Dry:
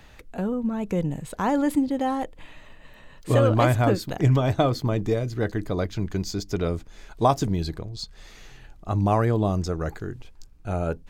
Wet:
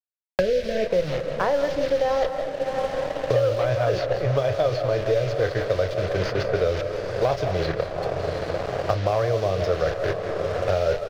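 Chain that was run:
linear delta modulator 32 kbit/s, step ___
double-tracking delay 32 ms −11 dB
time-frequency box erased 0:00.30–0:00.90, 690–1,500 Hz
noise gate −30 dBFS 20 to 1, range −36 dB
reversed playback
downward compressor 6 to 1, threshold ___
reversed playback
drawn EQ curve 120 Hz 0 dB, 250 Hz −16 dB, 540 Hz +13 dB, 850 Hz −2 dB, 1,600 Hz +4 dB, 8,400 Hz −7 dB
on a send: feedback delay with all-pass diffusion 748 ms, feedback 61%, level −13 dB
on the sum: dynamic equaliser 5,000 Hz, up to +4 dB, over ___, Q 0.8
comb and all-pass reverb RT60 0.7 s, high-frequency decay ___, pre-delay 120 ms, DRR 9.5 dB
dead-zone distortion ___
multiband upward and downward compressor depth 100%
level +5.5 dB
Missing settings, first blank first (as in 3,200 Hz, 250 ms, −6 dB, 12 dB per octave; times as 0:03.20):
−31 dBFS, −29 dBFS, −52 dBFS, 0.35×, −51.5 dBFS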